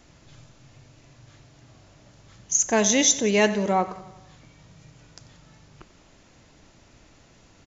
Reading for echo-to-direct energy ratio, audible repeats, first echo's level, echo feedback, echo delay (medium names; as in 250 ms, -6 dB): -15.0 dB, 4, -17.0 dB, 59%, 91 ms